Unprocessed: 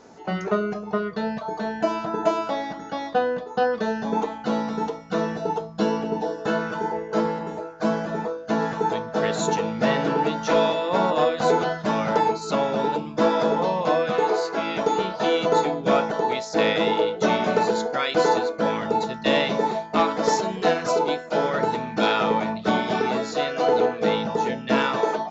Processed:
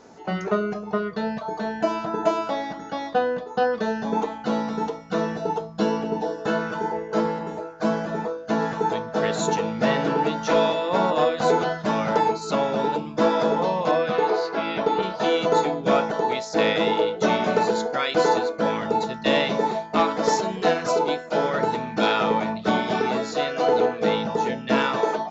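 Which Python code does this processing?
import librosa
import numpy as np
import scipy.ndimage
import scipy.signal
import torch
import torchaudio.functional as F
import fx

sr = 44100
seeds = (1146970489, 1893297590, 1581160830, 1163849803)

y = fx.lowpass(x, sr, hz=fx.line((13.91, 6400.0), (15.01, 4400.0)), slope=24, at=(13.91, 15.01), fade=0.02)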